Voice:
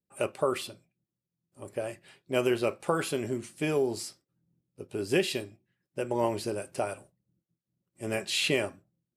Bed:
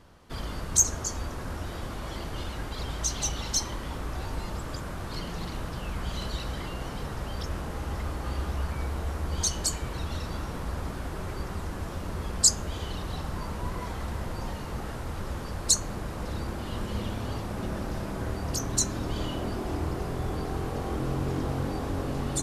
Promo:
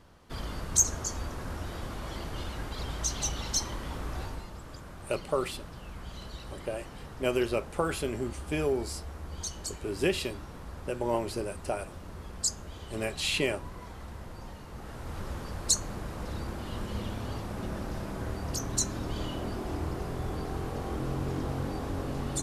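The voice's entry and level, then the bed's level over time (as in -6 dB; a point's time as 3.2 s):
4.90 s, -1.5 dB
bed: 4.22 s -2 dB
4.49 s -9.5 dB
14.71 s -9.5 dB
15.17 s -3 dB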